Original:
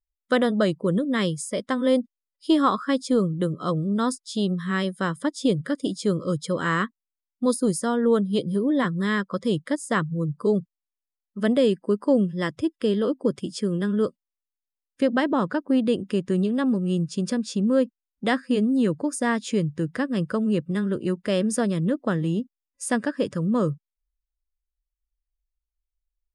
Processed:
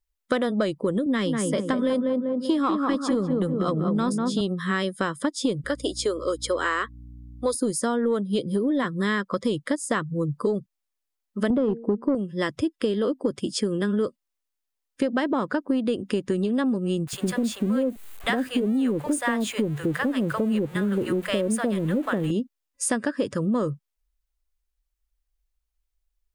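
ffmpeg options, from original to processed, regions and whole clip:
ffmpeg -i in.wav -filter_complex "[0:a]asettb=1/sr,asplit=3[link_01][link_02][link_03];[link_01]atrim=end=1.064[link_04];[link_02]atrim=start=1.06:end=4.41,asetpts=PTS-STARTPTS,afade=type=in:duration=0.004:curve=qsin,afade=type=out:start_time=3.346:duration=0.004:curve=qsin,highpass=frequency=140:width=0.5412,highpass=frequency=140:width=1.3066,bass=frequency=250:gain=5,treble=frequency=4000:gain=-2,asplit=2[link_05][link_06];[link_06]adelay=195,lowpass=frequency=1100:poles=1,volume=-3.5dB,asplit=2[link_07][link_08];[link_08]adelay=195,lowpass=frequency=1100:poles=1,volume=0.48,asplit=2[link_09][link_10];[link_10]adelay=195,lowpass=frequency=1100:poles=1,volume=0.48,asplit=2[link_11][link_12];[link_12]adelay=195,lowpass=frequency=1100:poles=1,volume=0.48,asplit=2[link_13][link_14];[link_14]adelay=195,lowpass=frequency=1100:poles=1,volume=0.48,asplit=2[link_15][link_16];[link_16]adelay=195,lowpass=frequency=1100:poles=1,volume=0.48[link_17];[link_05][link_07][link_09][link_11][link_13][link_15][link_17]amix=inputs=7:normalize=0,atrim=end_sample=147735[link_18];[link_03]atrim=start=4.406[link_19];[link_04][link_18]acrossfade=duration=0.004:curve1=hsin:curve2=qsin[link_20];[link_20][link_19]acrossfade=duration=0.004:curve1=qsin:curve2=hsin,asettb=1/sr,asplit=3[link_21][link_22][link_23];[link_21]atrim=end=5.644[link_24];[link_22]atrim=start=5.64:end=7.55,asetpts=PTS-STARTPTS,afade=type=in:duration=0.004:curve=qsin,afade=type=out:start_time=1.906:duration=0.004:curve=qsin,highpass=frequency=350:width=0.5412,highpass=frequency=350:width=1.3066,aeval=exprs='val(0)+0.00447*(sin(2*PI*60*n/s)+sin(2*PI*2*60*n/s)/2+sin(2*PI*3*60*n/s)/3+sin(2*PI*4*60*n/s)/4+sin(2*PI*5*60*n/s)/5)':channel_layout=same[link_25];[link_23]atrim=start=7.546[link_26];[link_24][link_25]acrossfade=duration=0.004:curve1=hsin:curve2=qsin[link_27];[link_27][link_26]acrossfade=duration=0.004:curve1=qsin:curve2=hsin,asettb=1/sr,asplit=3[link_28][link_29][link_30];[link_28]atrim=end=11.504[link_31];[link_29]atrim=start=11.5:end=12.15,asetpts=PTS-STARTPTS,afade=type=in:duration=0.004:curve=qsin,afade=type=out:start_time=0.646:duration=0.004:curve=qsin,lowpass=frequency=1000:poles=1,lowshelf=frequency=380:gain=11.5,bandreject=frequency=230.7:width_type=h:width=4,bandreject=frequency=461.4:width_type=h:width=4,bandreject=frequency=692.1:width_type=h:width=4[link_32];[link_30]atrim=start=12.146[link_33];[link_31][link_32]acrossfade=duration=0.004:curve1=hsin:curve2=qsin[link_34];[link_34][link_33]acrossfade=duration=0.004:curve1=qsin:curve2=hsin,asettb=1/sr,asplit=3[link_35][link_36][link_37];[link_35]atrim=end=17.074[link_38];[link_36]atrim=start=17.07:end=22.31,asetpts=PTS-STARTPTS,afade=type=in:duration=0.004:curve=qsin,afade=type=out:start_time=5.236:duration=0.004:curve=qsin,aeval=exprs='val(0)+0.5*0.0126*sgn(val(0))':channel_layout=same,equalizer=frequency=5300:width=2.2:gain=-11,acrossover=split=700[link_39][link_40];[link_39]adelay=60[link_41];[link_41][link_40]amix=inputs=2:normalize=0,atrim=end_sample=231084[link_42];[link_37]atrim=start=22.306[link_43];[link_38][link_42]acrossfade=duration=0.004:curve1=hsin:curve2=qsin[link_44];[link_44][link_43]acrossfade=duration=0.004:curve1=qsin:curve2=hsin,acontrast=62,equalizer=frequency=170:width_type=o:width=0.42:gain=-7.5,acompressor=threshold=-21dB:ratio=6" out.wav

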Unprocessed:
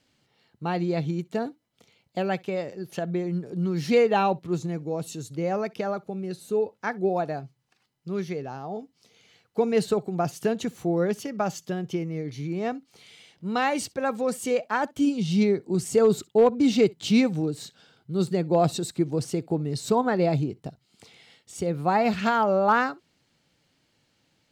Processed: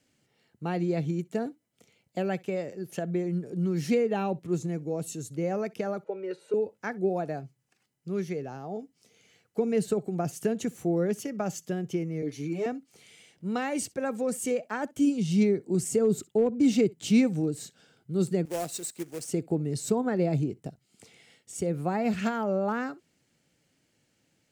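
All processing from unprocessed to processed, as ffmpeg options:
ffmpeg -i in.wav -filter_complex "[0:a]asettb=1/sr,asplit=3[link_01][link_02][link_03];[link_01]atrim=end=6.044[link_04];[link_02]atrim=start=6.04:end=6.54,asetpts=PTS-STARTPTS,afade=type=in:duration=0.004:curve=qsin,afade=type=out:start_time=0.496:duration=0.004:curve=qsin,aecho=1:1:2.1:0.99,atrim=end_sample=22050,acontrast=39,highpass=540,lowpass=2300[link_05];[link_03]atrim=start=6.536[link_06];[link_04][link_05]acrossfade=duration=0.004:curve1=hsin:curve2=qsin[link_07];[link_07][link_06]acrossfade=duration=0.004:curve1=qsin:curve2=hsin,asettb=1/sr,asplit=3[link_08][link_09][link_10];[link_08]atrim=end=12.224[link_11];[link_09]atrim=start=12.22:end=12.66,asetpts=PTS-STARTPTS,afade=type=in:duration=0.004:curve=qsin,afade=type=out:start_time=0.436:duration=0.004:curve=qsin,highpass=240,bandreject=frequency=2000:width=21,aecho=1:1:6.8:0.98,atrim=end_sample=19404[link_12];[link_10]atrim=start=12.656[link_13];[link_11][link_12]acrossfade=duration=0.004:curve1=hsin:curve2=qsin[link_14];[link_14][link_13]acrossfade=duration=0.004:curve1=qsin:curve2=hsin,asettb=1/sr,asplit=3[link_15][link_16][link_17];[link_15]atrim=end=18.454[link_18];[link_16]atrim=start=18.45:end=19.29,asetpts=PTS-STARTPTS,afade=type=in:duration=0.004:curve=qsin,afade=type=out:start_time=0.836:duration=0.004:curve=qsin,highpass=frequency=1100:poles=1,equalizer=frequency=1500:width=0.81:gain=-4.5,acrusher=bits=2:mode=log:mix=0:aa=0.000001[link_19];[link_17]atrim=start=19.286[link_20];[link_18][link_19]acrossfade=duration=0.004:curve1=hsin:curve2=qsin[link_21];[link_21][link_20]acrossfade=duration=0.004:curve1=qsin:curve2=hsin,equalizer=frequency=1000:width_type=o:width=1:gain=-7,equalizer=frequency=4000:width_type=o:width=1:gain=-8,equalizer=frequency=8000:width_type=o:width=1:gain=4,acrossover=split=380[link_22][link_23];[link_23]acompressor=threshold=-28dB:ratio=10[link_24];[link_22][link_24]amix=inputs=2:normalize=0,lowshelf=frequency=85:gain=-7" out.wav

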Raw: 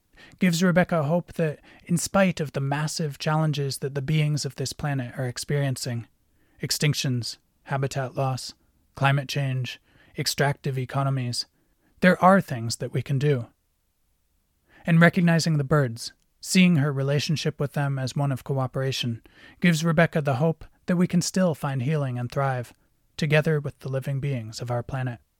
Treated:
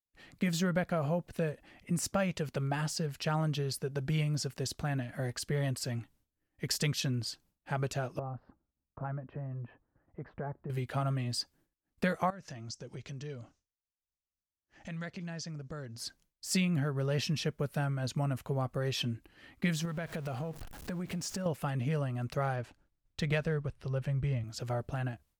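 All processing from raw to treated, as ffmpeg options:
ffmpeg -i in.wav -filter_complex "[0:a]asettb=1/sr,asplit=3[link_01][link_02][link_03];[link_01]atrim=end=8.194[link_04];[link_02]atrim=start=8.19:end=10.7,asetpts=PTS-STARTPTS,afade=type=in:duration=0.004:curve=qsin,afade=type=out:start_time=2.506:duration=0.004:curve=qsin,lowpass=frequency=1300:width=0.5412,lowpass=frequency=1300:width=1.3066,acompressor=threshold=-35dB:ratio=2:attack=3.2:release=140:knee=1:detection=peak[link_05];[link_03]atrim=start=10.696[link_06];[link_04][link_05]acrossfade=duration=0.004:curve1=hsin:curve2=qsin[link_07];[link_07][link_06]acrossfade=duration=0.004:curve1=qsin:curve2=hsin,asettb=1/sr,asplit=3[link_08][link_09][link_10];[link_08]atrim=end=12.304[link_11];[link_09]atrim=start=12.3:end=15.98,asetpts=PTS-STARTPTS,afade=type=in:duration=0.004:curve=qsin,afade=type=out:start_time=3.676:duration=0.004:curve=qsin,lowpass=frequency=6100:width_type=q:width=3.6,acompressor=threshold=-37dB:ratio=3:attack=3.2:release=140:knee=1:detection=peak[link_12];[link_10]atrim=start=15.976[link_13];[link_11][link_12]acrossfade=duration=0.004:curve1=hsin:curve2=qsin[link_14];[link_14][link_13]acrossfade=duration=0.004:curve1=qsin:curve2=hsin,asettb=1/sr,asplit=3[link_15][link_16][link_17];[link_15]atrim=end=19.854[link_18];[link_16]atrim=start=19.85:end=21.46,asetpts=PTS-STARTPTS,afade=type=in:duration=0.004:curve=qsin,afade=type=out:start_time=1.606:duration=0.004:curve=qsin,aeval=exprs='val(0)+0.5*0.0168*sgn(val(0))':channel_layout=same,acompressor=threshold=-27dB:ratio=8:attack=3.2:release=140:knee=1:detection=peak[link_19];[link_17]atrim=start=21.456[link_20];[link_18][link_19]acrossfade=duration=0.004:curve1=hsin:curve2=qsin[link_21];[link_21][link_20]acrossfade=duration=0.004:curve1=qsin:curve2=hsin,asettb=1/sr,asplit=3[link_22][link_23][link_24];[link_22]atrim=end=22.564[link_25];[link_23]atrim=start=22.56:end=24.44,asetpts=PTS-STARTPTS,afade=type=in:duration=0.004:curve=qsin,afade=type=out:start_time=1.876:duration=0.004:curve=qsin,asubboost=boost=8.5:cutoff=98,adynamicsmooth=sensitivity=8:basefreq=6300[link_26];[link_24]atrim=start=24.436[link_27];[link_25][link_26]acrossfade=duration=0.004:curve1=hsin:curve2=qsin[link_28];[link_28][link_27]acrossfade=duration=0.004:curve1=qsin:curve2=hsin,agate=range=-33dB:threshold=-52dB:ratio=3:detection=peak,acompressor=threshold=-20dB:ratio=6,volume=-6.5dB" out.wav

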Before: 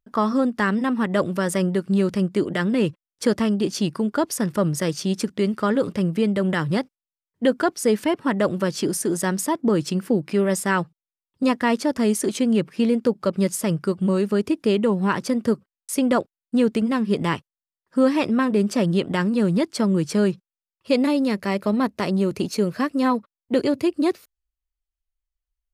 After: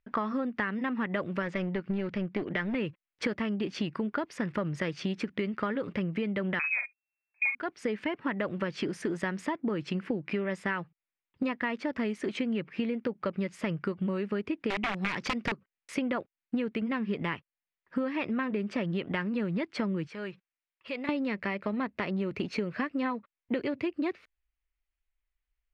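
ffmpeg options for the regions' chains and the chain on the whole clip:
ffmpeg -i in.wav -filter_complex "[0:a]asettb=1/sr,asplit=3[link_01][link_02][link_03];[link_01]atrim=end=1.424[link_04];[link_02]atrim=start=1.42:end=2.75,asetpts=PTS-STARTPTS,afade=type=in:duration=0.004:curve=qsin,afade=type=out:start_time=1.326:duration=0.004:curve=qsin,lowpass=frequency=6300:width=0.5412,lowpass=frequency=6300:width=1.3066,aeval=exprs='clip(val(0),-1,0.0794)':channel_layout=same[link_05];[link_03]atrim=start=2.746[link_06];[link_04][link_05]acrossfade=duration=0.004:curve1=hsin:curve2=qsin[link_07];[link_07][link_06]acrossfade=duration=0.004:curve1=qsin:curve2=hsin,asettb=1/sr,asplit=3[link_08][link_09][link_10];[link_08]atrim=end=6.594[link_11];[link_09]atrim=start=6.59:end=7.55,asetpts=PTS-STARTPTS,afade=type=in:duration=0.004:curve=qsin,afade=type=out:start_time=0.956:duration=0.004:curve=qsin,lowpass=frequency=2300:width_type=q:width=0.5098,lowpass=frequency=2300:width_type=q:width=0.6013,lowpass=frequency=2300:width_type=q:width=0.9,lowpass=frequency=2300:width_type=q:width=2.563,afreqshift=-2700,asplit=2[link_12][link_13];[link_13]adelay=44,volume=-7dB[link_14];[link_12][link_14]amix=inputs=2:normalize=0,atrim=end_sample=42336[link_15];[link_10]atrim=start=7.546[link_16];[link_11][link_15]acrossfade=duration=0.004:curve1=hsin:curve2=qsin[link_17];[link_17][link_16]acrossfade=duration=0.004:curve1=qsin:curve2=hsin,asettb=1/sr,asplit=3[link_18][link_19][link_20];[link_18]atrim=end=14.704[link_21];[link_19]atrim=start=14.7:end=15.52,asetpts=PTS-STARTPTS,afade=type=in:duration=0.004:curve=qsin,afade=type=out:start_time=0.816:duration=0.004:curve=qsin,equalizer=frequency=5900:width=1.1:gain=12.5,aeval=exprs='(mod(5.62*val(0)+1,2)-1)/5.62':channel_layout=same[link_22];[link_20]atrim=start=15.516[link_23];[link_21][link_22]acrossfade=duration=0.004:curve1=hsin:curve2=qsin[link_24];[link_24][link_23]acrossfade=duration=0.004:curve1=qsin:curve2=hsin,asettb=1/sr,asplit=3[link_25][link_26][link_27];[link_25]atrim=end=20.074[link_28];[link_26]atrim=start=20.07:end=21.09,asetpts=PTS-STARTPTS,afade=type=in:duration=0.004:curve=qsin,afade=type=out:start_time=1.016:duration=0.004:curve=qsin,lowshelf=frequency=380:gain=-11.5,acompressor=threshold=-44dB:ratio=2:attack=3.2:release=140:knee=1:detection=peak[link_29];[link_27]atrim=start=21.086[link_30];[link_28][link_29]acrossfade=duration=0.004:curve1=hsin:curve2=qsin[link_31];[link_31][link_30]acrossfade=duration=0.004:curve1=qsin:curve2=hsin,lowpass=2900,equalizer=frequency=2200:width_type=o:width=1.1:gain=10,acompressor=threshold=-28dB:ratio=10" out.wav

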